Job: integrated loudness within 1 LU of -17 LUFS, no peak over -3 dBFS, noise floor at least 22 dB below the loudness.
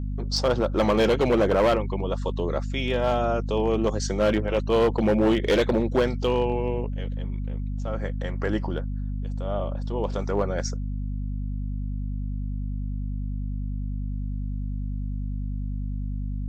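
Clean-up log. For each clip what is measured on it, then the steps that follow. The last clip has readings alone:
clipped 1.4%; flat tops at -15.5 dBFS; hum 50 Hz; harmonics up to 250 Hz; hum level -27 dBFS; loudness -26.5 LUFS; peak -15.5 dBFS; loudness target -17.0 LUFS
-> clip repair -15.5 dBFS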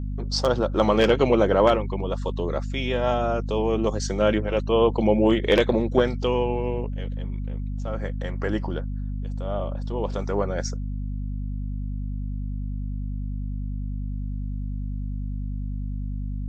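clipped 0.0%; hum 50 Hz; harmonics up to 250 Hz; hum level -26 dBFS
-> de-hum 50 Hz, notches 5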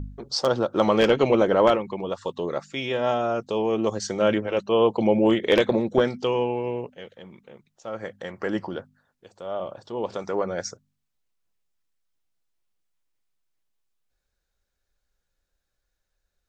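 hum none; loudness -24.0 LUFS; peak -5.5 dBFS; loudness target -17.0 LUFS
-> gain +7 dB; limiter -3 dBFS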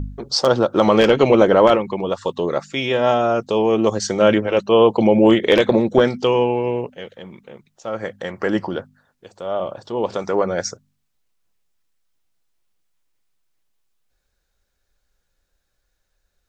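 loudness -17.5 LUFS; peak -3.0 dBFS; noise floor -72 dBFS

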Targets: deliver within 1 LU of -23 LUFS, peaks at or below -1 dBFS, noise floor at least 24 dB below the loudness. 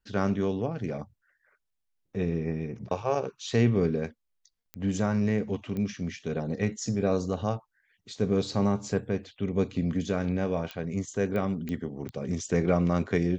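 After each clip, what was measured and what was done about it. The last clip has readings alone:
clicks 6; loudness -29.5 LUFS; peak -11.0 dBFS; loudness target -23.0 LUFS
-> de-click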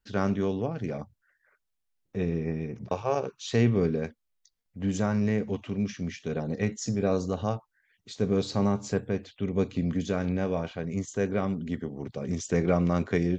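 clicks 0; loudness -29.5 LUFS; peak -11.0 dBFS; loudness target -23.0 LUFS
-> gain +6.5 dB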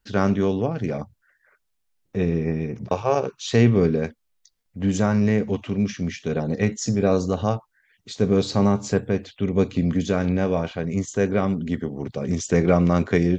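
loudness -23.0 LUFS; peak -4.5 dBFS; noise floor -72 dBFS

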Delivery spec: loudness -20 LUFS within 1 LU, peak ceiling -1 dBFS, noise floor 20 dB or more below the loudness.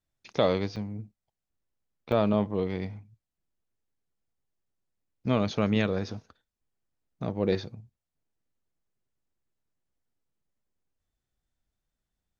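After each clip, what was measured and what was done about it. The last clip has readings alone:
dropouts 2; longest dropout 4.1 ms; loudness -29.0 LUFS; peak -10.5 dBFS; loudness target -20.0 LUFS
-> interpolate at 0.76/2.12, 4.1 ms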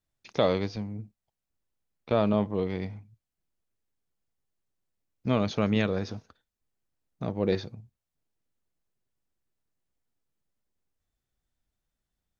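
dropouts 0; loudness -29.0 LUFS; peak -10.5 dBFS; loudness target -20.0 LUFS
-> gain +9 dB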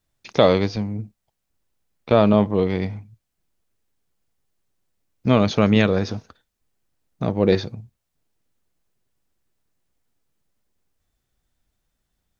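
loudness -20.0 LUFS; peak -1.5 dBFS; noise floor -78 dBFS

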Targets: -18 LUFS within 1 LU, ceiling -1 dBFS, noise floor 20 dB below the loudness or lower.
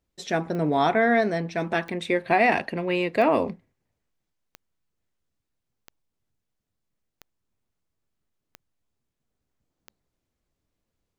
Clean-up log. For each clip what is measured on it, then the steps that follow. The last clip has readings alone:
clicks 8; loudness -23.5 LUFS; peak -7.0 dBFS; loudness target -18.0 LUFS
-> de-click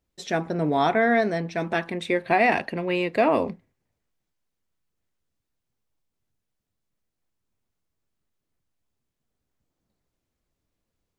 clicks 0; loudness -23.5 LUFS; peak -7.0 dBFS; loudness target -18.0 LUFS
-> gain +5.5 dB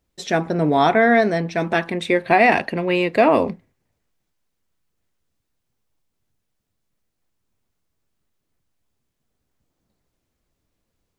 loudness -18.5 LUFS; peak -1.5 dBFS; noise floor -77 dBFS

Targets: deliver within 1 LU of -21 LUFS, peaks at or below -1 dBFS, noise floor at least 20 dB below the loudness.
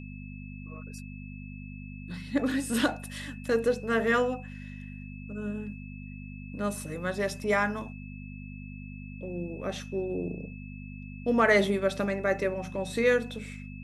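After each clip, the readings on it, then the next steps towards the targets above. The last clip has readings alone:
hum 50 Hz; harmonics up to 250 Hz; hum level -40 dBFS; steady tone 2600 Hz; tone level -50 dBFS; loudness -29.5 LUFS; peak -11.0 dBFS; loudness target -21.0 LUFS
-> de-hum 50 Hz, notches 5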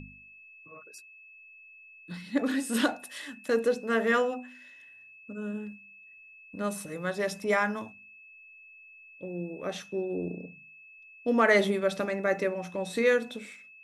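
hum none; steady tone 2600 Hz; tone level -50 dBFS
-> notch 2600 Hz, Q 30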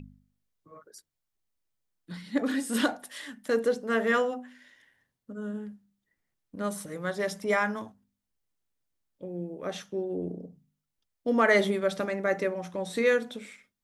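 steady tone none; loudness -29.0 LUFS; peak -10.5 dBFS; loudness target -21.0 LUFS
-> gain +8 dB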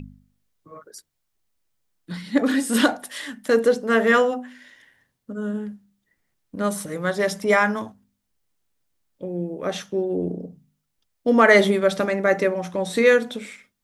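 loudness -21.0 LUFS; peak -2.5 dBFS; noise floor -76 dBFS

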